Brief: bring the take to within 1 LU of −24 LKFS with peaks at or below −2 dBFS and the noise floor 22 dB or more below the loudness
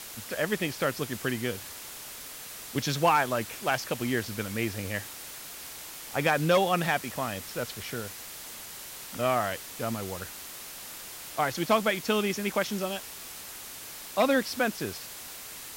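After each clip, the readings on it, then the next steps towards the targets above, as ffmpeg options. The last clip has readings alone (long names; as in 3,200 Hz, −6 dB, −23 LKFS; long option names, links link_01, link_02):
background noise floor −43 dBFS; target noise floor −53 dBFS; integrated loudness −30.5 LKFS; sample peak −12.5 dBFS; target loudness −24.0 LKFS
→ -af "afftdn=noise_reduction=10:noise_floor=-43"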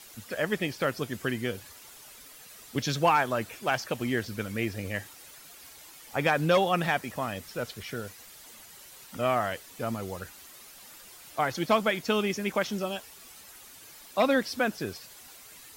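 background noise floor −50 dBFS; target noise floor −52 dBFS
→ -af "afftdn=noise_reduction=6:noise_floor=-50"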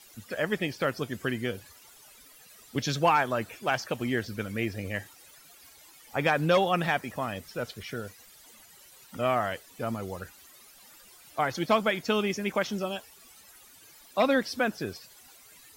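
background noise floor −54 dBFS; integrated loudness −29.5 LKFS; sample peak −12.5 dBFS; target loudness −24.0 LKFS
→ -af "volume=5.5dB"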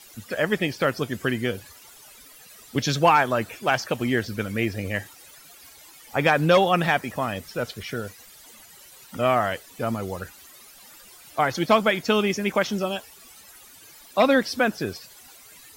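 integrated loudness −24.0 LKFS; sample peak −7.0 dBFS; background noise floor −49 dBFS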